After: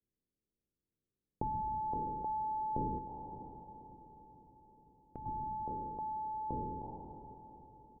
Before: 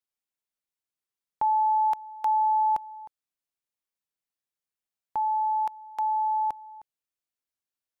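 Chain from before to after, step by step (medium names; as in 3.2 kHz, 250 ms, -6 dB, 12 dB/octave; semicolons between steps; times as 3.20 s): spectral sustain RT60 2.28 s; steep low-pass 560 Hz 36 dB/octave; comb 0.8 ms, depth 59%; 2.98–5.26 s: compression 2:1, threshold -59 dBFS, peak gain reduction 9 dB; echo that smears into a reverb 579 ms, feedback 55%, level -14 dB; trim +8.5 dB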